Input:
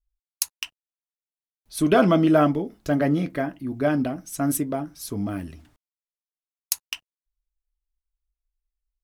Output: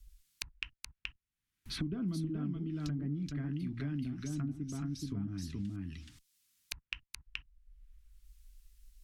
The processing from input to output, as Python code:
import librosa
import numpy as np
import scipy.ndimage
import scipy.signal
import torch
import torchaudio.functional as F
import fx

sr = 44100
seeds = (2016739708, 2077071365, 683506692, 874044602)

p1 = fx.tone_stack(x, sr, knobs='6-0-2')
p2 = fx.env_lowpass_down(p1, sr, base_hz=550.0, full_db=-41.0)
p3 = fx.peak_eq(p2, sr, hz=570.0, db=-13.0, octaves=0.82)
p4 = p3 + fx.echo_single(p3, sr, ms=426, db=-4.5, dry=0)
p5 = fx.band_squash(p4, sr, depth_pct=100)
y = F.gain(torch.from_numpy(p5), 7.5).numpy()